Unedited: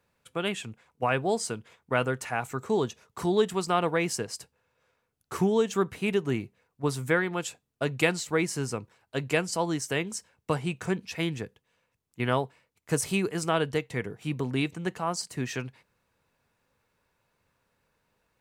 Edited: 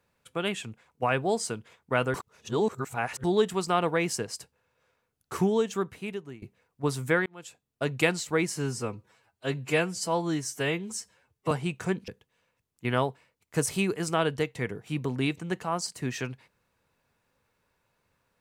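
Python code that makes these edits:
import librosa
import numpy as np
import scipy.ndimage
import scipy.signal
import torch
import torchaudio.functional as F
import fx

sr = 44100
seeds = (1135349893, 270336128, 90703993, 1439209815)

y = fx.edit(x, sr, fx.reverse_span(start_s=2.14, length_s=1.1),
    fx.fade_out_to(start_s=5.44, length_s=0.98, floor_db=-21.5),
    fx.fade_in_span(start_s=7.26, length_s=0.62),
    fx.stretch_span(start_s=8.54, length_s=1.98, factor=1.5),
    fx.cut(start_s=11.09, length_s=0.34), tone=tone)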